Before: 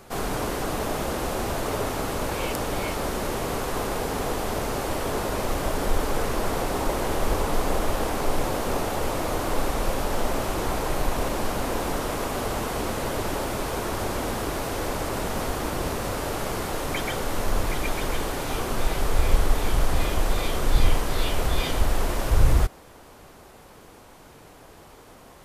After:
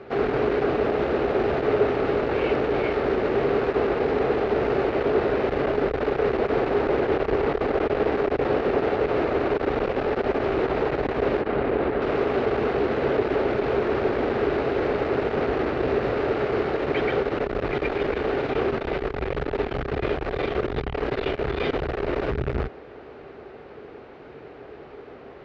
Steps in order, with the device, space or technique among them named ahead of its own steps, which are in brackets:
0:11.41–0:12.02: high-frequency loss of the air 180 metres
guitar amplifier (tube saturation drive 25 dB, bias 0.5; bass and treble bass +2 dB, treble −10 dB; loudspeaker in its box 80–3,900 Hz, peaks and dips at 94 Hz −9 dB, 180 Hz −8 dB, 410 Hz +10 dB, 1,000 Hz −7 dB, 3,300 Hz −5 dB)
level +7 dB

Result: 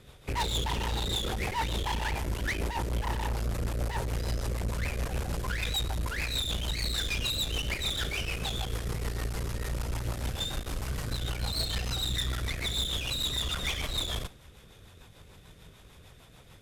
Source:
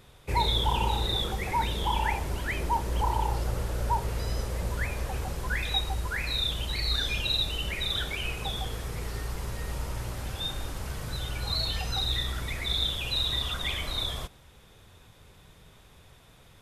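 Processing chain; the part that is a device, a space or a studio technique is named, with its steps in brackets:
overdriven rotary cabinet (tube saturation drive 34 dB, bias 0.75; rotating-speaker cabinet horn 6.7 Hz)
level +8 dB

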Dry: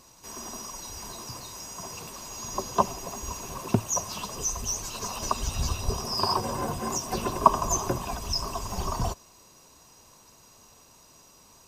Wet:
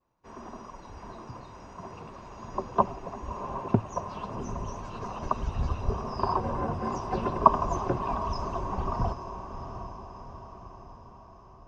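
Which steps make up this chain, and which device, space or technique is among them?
hearing-loss simulation (low-pass filter 1,600 Hz 12 dB per octave; downward expander −48 dBFS)
0:06.84–0:08.61: parametric band 4,500 Hz +4.5 dB 1.6 octaves
feedback delay with all-pass diffusion 731 ms, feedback 56%, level −10 dB

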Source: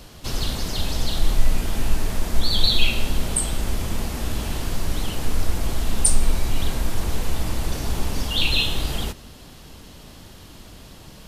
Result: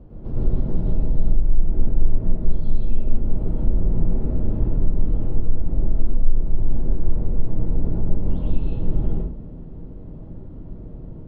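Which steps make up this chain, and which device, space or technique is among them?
television next door (downward compressor 5 to 1, threshold −22 dBFS, peak gain reduction 13.5 dB; low-pass filter 410 Hz 12 dB per octave; convolution reverb RT60 0.45 s, pre-delay 92 ms, DRR −5 dB)
level +1 dB

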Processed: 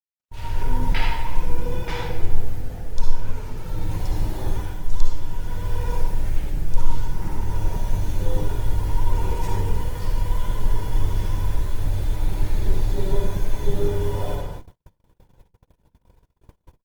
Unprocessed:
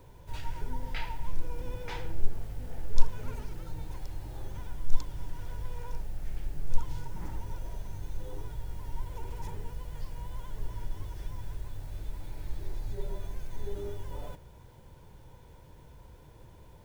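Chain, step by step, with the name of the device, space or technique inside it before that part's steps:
speakerphone in a meeting room (convolution reverb RT60 0.90 s, pre-delay 48 ms, DRR −0.5 dB; far-end echo of a speakerphone 320 ms, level −17 dB; automatic gain control gain up to 13.5 dB; noise gate −29 dBFS, range −57 dB; level −1.5 dB; Opus 20 kbit/s 48,000 Hz)

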